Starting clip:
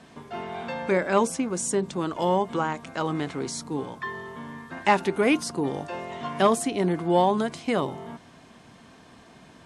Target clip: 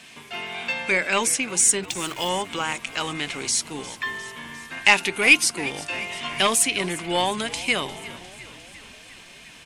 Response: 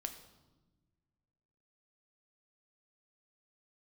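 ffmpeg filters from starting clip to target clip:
-filter_complex "[0:a]equalizer=frequency=2500:width_type=o:width=0.87:gain=13,aeval=exprs='0.794*(cos(1*acos(clip(val(0)/0.794,-1,1)))-cos(1*PI/2))+0.0355*(cos(4*acos(clip(val(0)/0.794,-1,1)))-cos(4*PI/2))':channel_layout=same,crystalizer=i=6.5:c=0,asettb=1/sr,asplit=3[link_01][link_02][link_03];[link_01]atrim=end=1.834[link_04];[link_02]atrim=start=1.83:end=2.29,asetpts=PTS-STARTPTS,afade=type=in:duration=0.004:curve=qsin,afade=type=out:start_time=0.456:duration=0.004:curve=qsin,acrusher=bits=4:mix=0:aa=0.5[link_05];[link_03]atrim=start=2.286[link_06];[link_04][link_05]acrossfade=duration=0.004:curve1=hsin:curve2=qsin[link_07];[link_07][link_06]acrossfade=duration=0.004:curve1=qsin:curve2=hsin,asplit=2[link_08][link_09];[link_09]asplit=7[link_10][link_11][link_12][link_13][link_14][link_15][link_16];[link_10]adelay=353,afreqshift=-57,volume=-17.5dB[link_17];[link_11]adelay=706,afreqshift=-114,volume=-21.2dB[link_18];[link_12]adelay=1059,afreqshift=-171,volume=-25dB[link_19];[link_13]adelay=1412,afreqshift=-228,volume=-28.7dB[link_20];[link_14]adelay=1765,afreqshift=-285,volume=-32.5dB[link_21];[link_15]adelay=2118,afreqshift=-342,volume=-36.2dB[link_22];[link_16]adelay=2471,afreqshift=-399,volume=-40dB[link_23];[link_17][link_18][link_19][link_20][link_21][link_22][link_23]amix=inputs=7:normalize=0[link_24];[link_08][link_24]amix=inputs=2:normalize=0,volume=-5.5dB"

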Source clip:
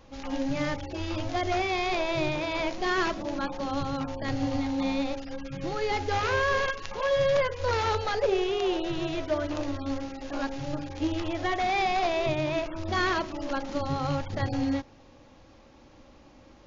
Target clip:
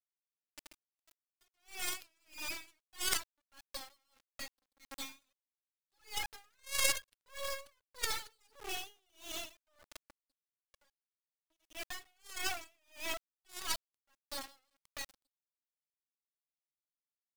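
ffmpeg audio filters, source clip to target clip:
ffmpeg -i in.wav -af "atempo=0.96,asoftclip=type=tanh:threshold=-26.5dB,aderivative,bandreject=frequency=60:width_type=h:width=6,bandreject=frequency=120:width_type=h:width=6,bandreject=frequency=180:width_type=h:width=6,bandreject=frequency=240:width_type=h:width=6,bandreject=frequency=300:width_type=h:width=6,bandreject=frequency=360:width_type=h:width=6,bandreject=frequency=420:width_type=h:width=6,bandreject=frequency=480:width_type=h:width=6,bandreject=frequency=540:width_type=h:width=6,aeval=exprs='0.0562*(cos(1*acos(clip(val(0)/0.0562,-1,1)))-cos(1*PI/2))+0.01*(cos(3*acos(clip(val(0)/0.0562,-1,1)))-cos(3*PI/2))+0.00178*(cos(6*acos(clip(val(0)/0.0562,-1,1)))-cos(6*PI/2))+0.00708*(cos(7*acos(clip(val(0)/0.0562,-1,1)))-cos(7*PI/2))':channel_layout=same,afftfilt=real='re*gte(hypot(re,im),0.00282)':imag='im*gte(hypot(re,im),0.00282)':win_size=1024:overlap=0.75,dynaudnorm=framelen=390:gausssize=13:maxgain=9dB,highshelf=frequency=4300:gain=4,acrusher=bits=6:dc=4:mix=0:aa=0.000001,aeval=exprs='val(0)*pow(10,-40*(0.5-0.5*cos(2*PI*1.6*n/s))/20)':channel_layout=same,volume=17dB" out.wav

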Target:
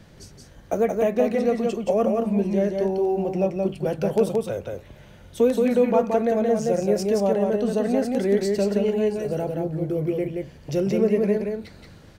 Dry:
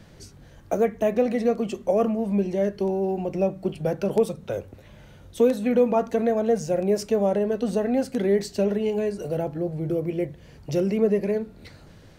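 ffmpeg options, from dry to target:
ffmpeg -i in.wav -af "aecho=1:1:175:0.668" out.wav

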